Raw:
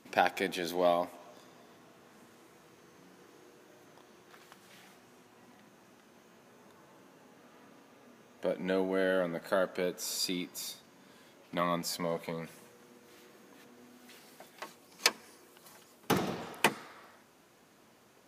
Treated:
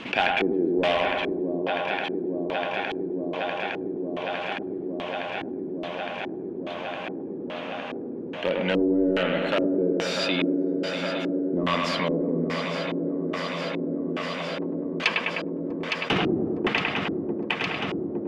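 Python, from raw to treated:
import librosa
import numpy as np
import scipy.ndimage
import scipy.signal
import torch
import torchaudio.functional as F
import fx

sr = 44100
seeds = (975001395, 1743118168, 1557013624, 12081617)

p1 = fx.echo_swing(x, sr, ms=861, ratio=3, feedback_pct=78, wet_db=-12)
p2 = (np.mod(10.0 ** (22.0 / 20.0) * p1 + 1.0, 2.0) - 1.0) / 10.0 ** (22.0 / 20.0)
p3 = p1 + (p2 * 10.0 ** (-6.5 / 20.0))
p4 = fx.echo_bbd(p3, sr, ms=102, stages=2048, feedback_pct=57, wet_db=-6)
p5 = fx.filter_lfo_lowpass(p4, sr, shape='square', hz=1.2, low_hz=350.0, high_hz=2900.0, q=3.3)
p6 = fx.env_flatten(p5, sr, amount_pct=50)
y = p6 * 10.0 ** (-1.0 / 20.0)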